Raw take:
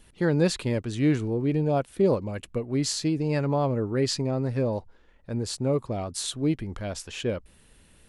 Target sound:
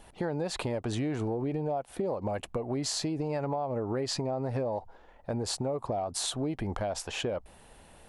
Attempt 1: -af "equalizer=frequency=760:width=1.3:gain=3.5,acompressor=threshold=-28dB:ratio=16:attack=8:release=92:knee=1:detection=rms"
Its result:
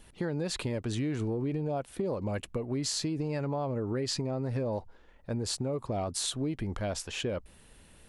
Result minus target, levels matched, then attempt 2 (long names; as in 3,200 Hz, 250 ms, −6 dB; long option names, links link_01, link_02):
1,000 Hz band −4.0 dB
-af "equalizer=frequency=760:width=1.3:gain=15.5,acompressor=threshold=-28dB:ratio=16:attack=8:release=92:knee=1:detection=rms"